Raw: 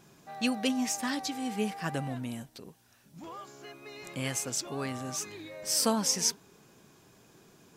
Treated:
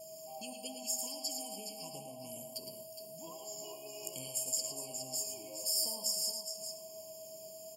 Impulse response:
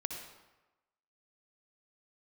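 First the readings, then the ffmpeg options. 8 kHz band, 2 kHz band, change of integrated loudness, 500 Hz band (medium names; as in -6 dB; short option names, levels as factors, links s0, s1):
-3.0 dB, -20.5 dB, -6.5 dB, -6.5 dB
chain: -filter_complex "[0:a]acompressor=threshold=0.00794:ratio=6,equalizer=f=79:w=1.6:g=-4.5,asplit=2[s0][s1];[1:a]atrim=start_sample=2205,highshelf=f=10000:g=11.5[s2];[s1][s2]afir=irnorm=-1:irlink=0,volume=0.501[s3];[s0][s3]amix=inputs=2:normalize=0,aexciter=amount=6.8:drive=7.6:freq=3500,aecho=1:1:111|415:0.447|0.398,adynamicequalizer=threshold=0.00251:dfrequency=880:dqfactor=1:tfrequency=880:tqfactor=1:attack=5:release=100:ratio=0.375:range=2.5:mode=boostabove:tftype=bell,aeval=exprs='val(0)+0.0141*sin(2*PI*640*n/s)':c=same,flanger=delay=9.2:depth=7.9:regen=64:speed=0.86:shape=triangular,afftfilt=real='re*eq(mod(floor(b*sr/1024/1100),2),0)':imag='im*eq(mod(floor(b*sr/1024/1100),2),0)':win_size=1024:overlap=0.75,volume=0.447"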